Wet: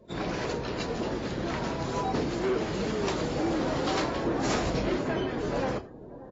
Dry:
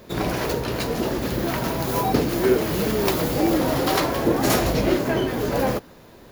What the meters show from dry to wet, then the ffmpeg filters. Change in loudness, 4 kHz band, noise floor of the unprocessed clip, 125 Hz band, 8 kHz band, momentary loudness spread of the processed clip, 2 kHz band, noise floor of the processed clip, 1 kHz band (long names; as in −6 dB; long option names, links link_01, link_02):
−7.5 dB, −7.5 dB, −47 dBFS, −7.5 dB, −10.5 dB, 4 LU, −6.5 dB, −45 dBFS, −6.5 dB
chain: -filter_complex "[0:a]asoftclip=type=hard:threshold=-16dB,bandreject=frequency=60:width_type=h:width=6,bandreject=frequency=120:width_type=h:width=6,asplit=2[link_01][link_02];[link_02]adelay=583,lowpass=frequency=860:poles=1,volume=-15dB,asplit=2[link_03][link_04];[link_04]adelay=583,lowpass=frequency=860:poles=1,volume=0.54,asplit=2[link_05][link_06];[link_06]adelay=583,lowpass=frequency=860:poles=1,volume=0.54,asplit=2[link_07][link_08];[link_08]adelay=583,lowpass=frequency=860:poles=1,volume=0.54,asplit=2[link_09][link_10];[link_10]adelay=583,lowpass=frequency=860:poles=1,volume=0.54[link_11];[link_03][link_05][link_07][link_09][link_11]amix=inputs=5:normalize=0[link_12];[link_01][link_12]amix=inputs=2:normalize=0,afftdn=noise_reduction=17:noise_floor=-46,asplit=2[link_13][link_14];[link_14]aecho=0:1:85:0.106[link_15];[link_13][link_15]amix=inputs=2:normalize=0,volume=-7.5dB" -ar 24000 -c:a aac -b:a 24k